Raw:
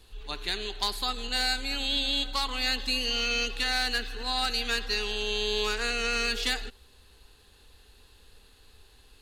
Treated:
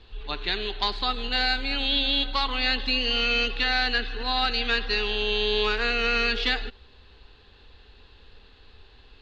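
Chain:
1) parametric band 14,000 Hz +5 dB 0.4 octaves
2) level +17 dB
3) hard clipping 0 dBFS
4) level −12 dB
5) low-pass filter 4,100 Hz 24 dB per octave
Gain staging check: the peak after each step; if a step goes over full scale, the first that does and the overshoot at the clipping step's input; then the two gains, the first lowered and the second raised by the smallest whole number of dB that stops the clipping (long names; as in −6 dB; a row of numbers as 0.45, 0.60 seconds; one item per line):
−13.5, +3.5, 0.0, −12.0, −12.0 dBFS
step 2, 3.5 dB
step 2 +13 dB, step 4 −8 dB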